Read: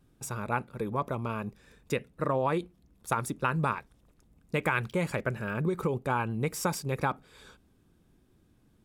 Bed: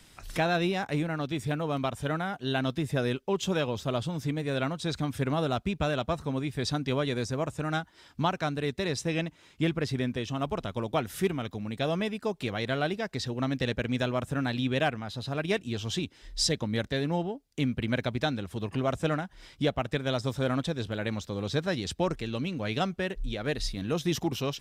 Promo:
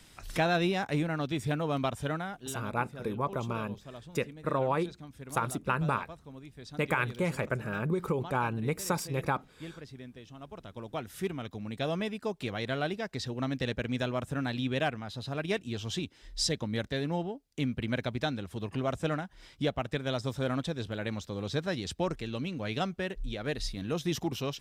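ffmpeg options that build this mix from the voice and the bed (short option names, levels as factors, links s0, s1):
-filter_complex "[0:a]adelay=2250,volume=0.891[s0];[1:a]volume=4.47,afade=t=out:st=1.93:d=0.69:silence=0.158489,afade=t=in:st=10.41:d=1.35:silence=0.211349[s1];[s0][s1]amix=inputs=2:normalize=0"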